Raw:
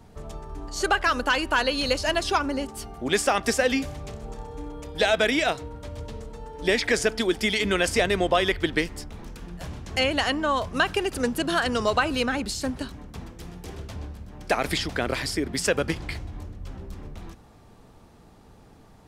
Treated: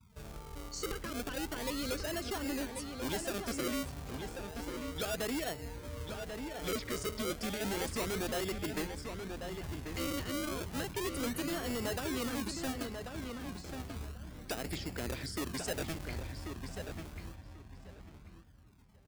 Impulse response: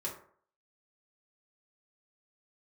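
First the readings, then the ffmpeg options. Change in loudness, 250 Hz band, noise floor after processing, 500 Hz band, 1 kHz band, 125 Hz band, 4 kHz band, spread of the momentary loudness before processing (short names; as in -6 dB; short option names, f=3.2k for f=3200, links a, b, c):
-13.5 dB, -9.0 dB, -55 dBFS, -13.0 dB, -15.5 dB, -7.0 dB, -13.5 dB, 18 LU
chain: -filter_complex "[0:a]afftdn=nr=36:nf=-41,highpass=f=41:w=0.5412,highpass=f=41:w=1.3066,acrossover=split=640[a][b];[a]acrusher=samples=35:mix=1:aa=0.000001:lfo=1:lforange=35:lforate=0.32[c];[b]acompressor=threshold=-40dB:ratio=5[d];[c][d]amix=inputs=2:normalize=0,volume=26.5dB,asoftclip=hard,volume=-26.5dB,highshelf=f=4k:g=7.5,asplit=2[e][f];[f]adelay=1089,lowpass=f=3.7k:p=1,volume=-6dB,asplit=2[g][h];[h]adelay=1089,lowpass=f=3.7k:p=1,volume=0.2,asplit=2[i][j];[j]adelay=1089,lowpass=f=3.7k:p=1,volume=0.2[k];[g][i][k]amix=inputs=3:normalize=0[l];[e][l]amix=inputs=2:normalize=0,volume=-7dB"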